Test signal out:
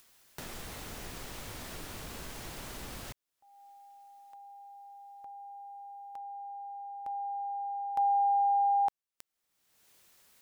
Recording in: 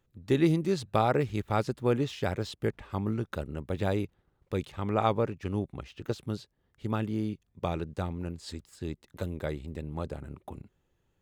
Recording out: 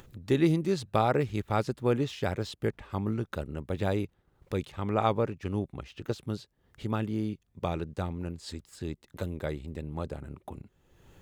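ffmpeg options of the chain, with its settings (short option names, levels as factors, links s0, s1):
-af "acompressor=mode=upward:threshold=0.0126:ratio=2.5"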